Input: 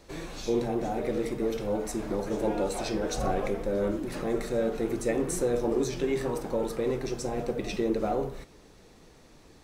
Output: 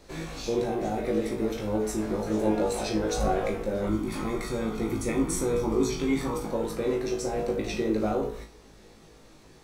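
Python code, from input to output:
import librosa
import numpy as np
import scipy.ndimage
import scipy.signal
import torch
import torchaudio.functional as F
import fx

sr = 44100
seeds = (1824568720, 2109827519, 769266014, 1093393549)

y = fx.comb(x, sr, ms=0.9, depth=0.56, at=(3.87, 6.48))
y = fx.room_flutter(y, sr, wall_m=3.2, rt60_s=0.27)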